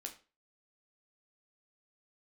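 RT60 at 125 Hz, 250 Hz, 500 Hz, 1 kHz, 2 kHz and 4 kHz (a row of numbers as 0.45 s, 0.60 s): 0.35 s, 0.35 s, 0.35 s, 0.35 s, 0.30 s, 0.30 s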